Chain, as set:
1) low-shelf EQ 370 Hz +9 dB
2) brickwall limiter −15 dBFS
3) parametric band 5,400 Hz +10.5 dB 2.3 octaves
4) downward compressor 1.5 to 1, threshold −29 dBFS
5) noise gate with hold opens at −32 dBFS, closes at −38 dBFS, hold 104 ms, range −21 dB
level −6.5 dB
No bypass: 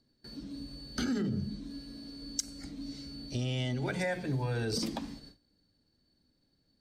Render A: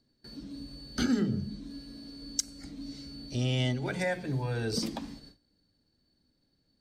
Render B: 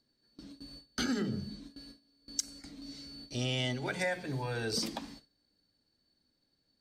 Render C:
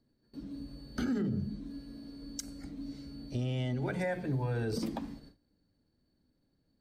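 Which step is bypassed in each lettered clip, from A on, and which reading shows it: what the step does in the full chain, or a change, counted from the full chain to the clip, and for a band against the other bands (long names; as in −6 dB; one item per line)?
2, change in momentary loudness spread +4 LU
1, 125 Hz band −5.0 dB
3, 4 kHz band −8.0 dB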